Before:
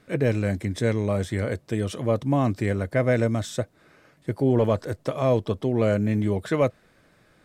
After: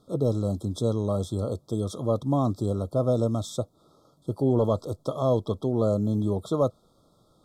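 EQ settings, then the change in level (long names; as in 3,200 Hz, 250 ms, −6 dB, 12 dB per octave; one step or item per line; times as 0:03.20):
linear-phase brick-wall band-stop 1,400–3,200 Hz
−2.0 dB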